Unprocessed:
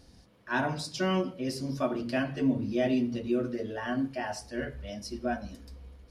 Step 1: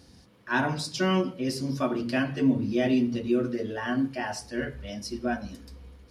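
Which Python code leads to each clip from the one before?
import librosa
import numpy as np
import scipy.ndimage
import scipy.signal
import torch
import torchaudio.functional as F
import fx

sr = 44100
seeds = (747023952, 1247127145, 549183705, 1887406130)

y = scipy.signal.sosfilt(scipy.signal.butter(2, 69.0, 'highpass', fs=sr, output='sos'), x)
y = fx.peak_eq(y, sr, hz=640.0, db=-4.5, octaves=0.47)
y = F.gain(torch.from_numpy(y), 4.0).numpy()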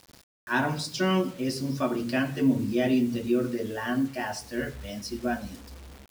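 y = fx.quant_dither(x, sr, seeds[0], bits=8, dither='none')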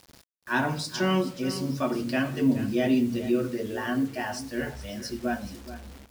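y = x + 10.0 ** (-13.5 / 20.0) * np.pad(x, (int(426 * sr / 1000.0), 0))[:len(x)]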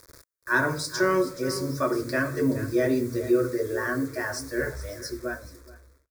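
y = fx.fade_out_tail(x, sr, length_s=1.32)
y = fx.fixed_phaser(y, sr, hz=790.0, stages=6)
y = F.gain(torch.from_numpy(y), 6.0).numpy()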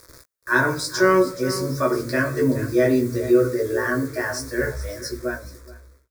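y = fx.doubler(x, sr, ms=16.0, db=-5)
y = F.gain(torch.from_numpy(y), 3.0).numpy()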